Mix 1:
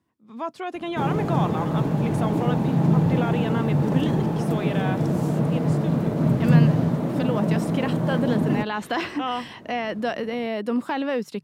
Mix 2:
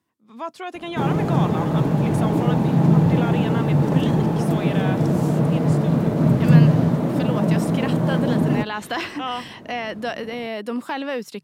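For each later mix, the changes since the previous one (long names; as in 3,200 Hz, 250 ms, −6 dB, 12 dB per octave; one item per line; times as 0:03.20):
speech: add spectral tilt +1.5 dB per octave
background +3.5 dB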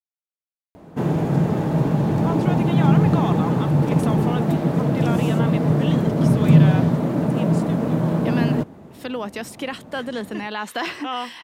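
speech: entry +1.85 s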